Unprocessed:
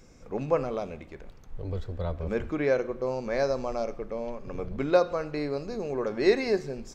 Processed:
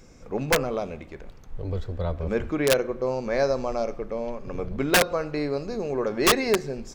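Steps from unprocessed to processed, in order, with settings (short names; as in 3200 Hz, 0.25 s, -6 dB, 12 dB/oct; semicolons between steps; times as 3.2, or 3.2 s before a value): wrapped overs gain 15.5 dB; gain +3.5 dB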